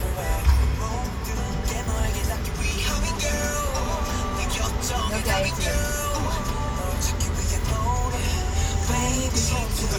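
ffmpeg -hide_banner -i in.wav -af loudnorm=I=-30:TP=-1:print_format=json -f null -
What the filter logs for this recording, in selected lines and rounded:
"input_i" : "-25.0",
"input_tp" : "-7.8",
"input_lra" : "1.2",
"input_thresh" : "-35.0",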